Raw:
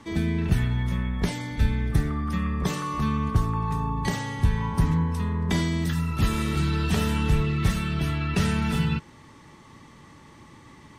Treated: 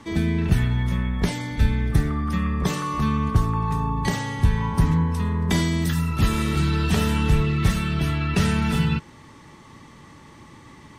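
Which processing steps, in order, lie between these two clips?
0:05.25–0:06.09: high-shelf EQ 8,100 Hz +6.5 dB
level +3 dB

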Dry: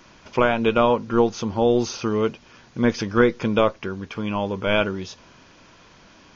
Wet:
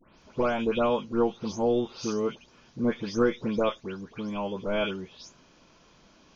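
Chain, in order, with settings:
every frequency bin delayed by itself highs late, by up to 218 ms
parametric band 1,800 Hz −5 dB 1.1 octaves
level −6 dB

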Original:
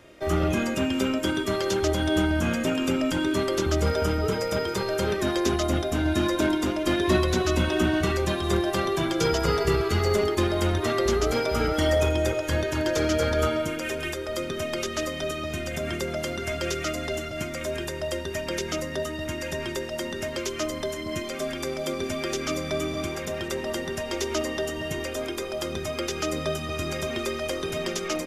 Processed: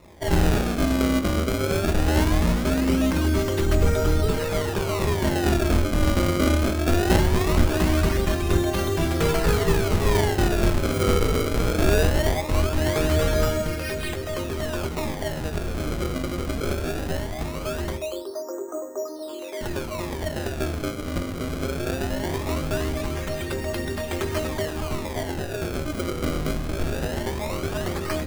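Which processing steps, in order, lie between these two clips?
sub-octave generator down 2 octaves, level +3 dB
0:17.97–0:19.61: elliptic band-pass filter 320–1,200 Hz, stop band 40 dB
sample-and-hold swept by an LFO 28×, swing 160% 0.2 Hz
on a send: convolution reverb RT60 0.40 s, pre-delay 5 ms, DRR 10 dB

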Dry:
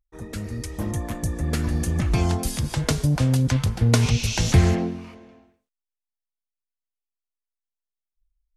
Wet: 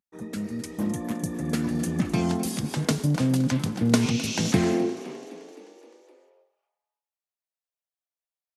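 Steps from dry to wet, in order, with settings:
high-pass filter sweep 200 Hz → 620 Hz, 0:04.51–0:05.25
echo with shifted repeats 258 ms, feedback 61%, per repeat +30 Hz, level −16 dB
level −3 dB

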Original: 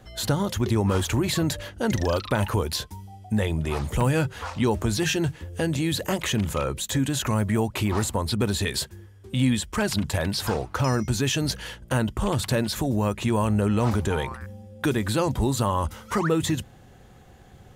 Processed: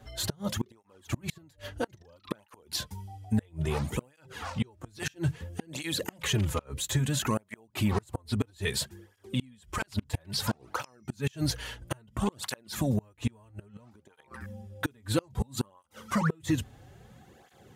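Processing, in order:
gate with flip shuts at −14 dBFS, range −31 dB
through-zero flanger with one copy inverted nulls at 0.6 Hz, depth 6.1 ms

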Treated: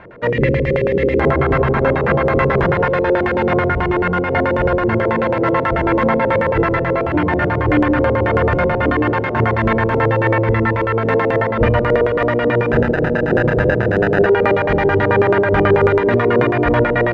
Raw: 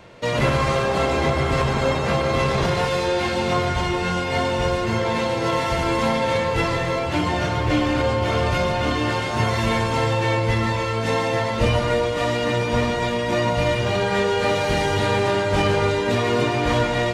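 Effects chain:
0:00.30–0:01.20: gain on a spectral selection 560–1,700 Hz −25 dB
0:12.72–0:14.26: sample-rate reduction 1,100 Hz, jitter 0%
auto-filter low-pass square 9.2 Hz 430–1,700 Hz
level +4 dB

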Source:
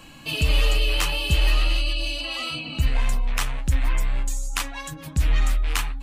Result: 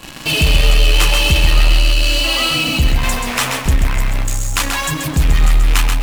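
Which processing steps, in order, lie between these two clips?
0:03.03–0:03.66: high-pass filter 140 Hz 12 dB per octave
in parallel at −10 dB: fuzz pedal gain 44 dB, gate −41 dBFS
on the sum: feedback echo at a low word length 133 ms, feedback 35%, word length 7 bits, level −5 dB
level +4 dB

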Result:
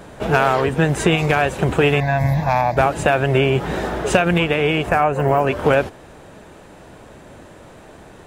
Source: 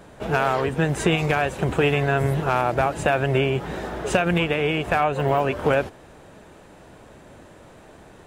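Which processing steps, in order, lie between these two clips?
0:02.00–0:02.77: phaser with its sweep stopped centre 2,000 Hz, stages 8
0:04.89–0:05.47: parametric band 3,600 Hz −14 dB 0.64 octaves
speech leveller within 3 dB 0.5 s
level +5 dB

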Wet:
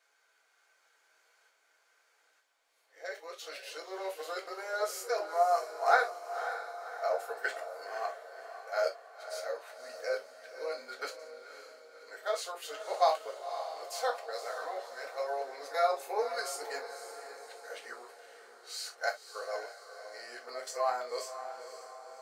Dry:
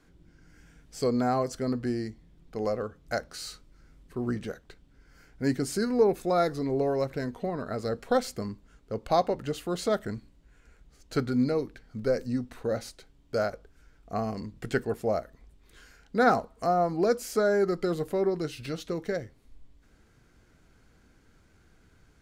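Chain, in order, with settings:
played backwards from end to start
inverse Chebyshev high-pass filter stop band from 180 Hz, stop band 60 dB
shaped tremolo saw up 0.67 Hz, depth 35%
on a send: feedback delay with all-pass diffusion 538 ms, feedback 53%, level −10 dB
on the sum: reverb whose tail is shaped and stops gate 90 ms falling, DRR 0 dB
level −2.5 dB

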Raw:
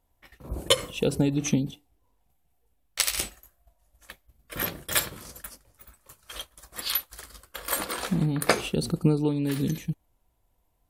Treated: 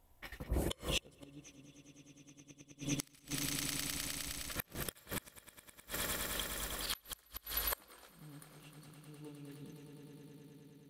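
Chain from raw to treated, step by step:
volume swells 209 ms
echo that builds up and dies away 103 ms, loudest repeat 5, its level −8.5 dB
gate with flip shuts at −26 dBFS, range −30 dB
level +4 dB

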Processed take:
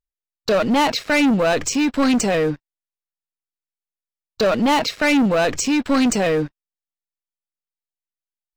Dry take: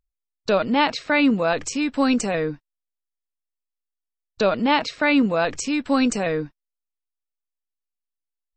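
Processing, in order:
leveller curve on the samples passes 3
level −4 dB

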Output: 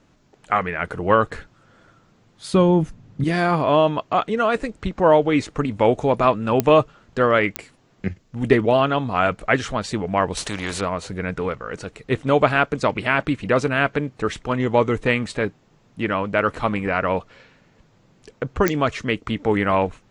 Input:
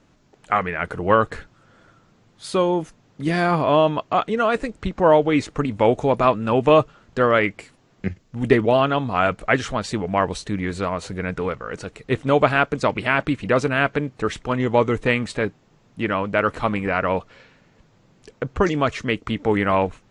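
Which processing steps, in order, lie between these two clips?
0:02.53–0:03.24: bass and treble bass +14 dB, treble −3 dB
digital clicks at 0:06.60/0:07.56/0:18.68, −4 dBFS
0:10.37–0:10.81: every bin compressed towards the loudest bin 2 to 1

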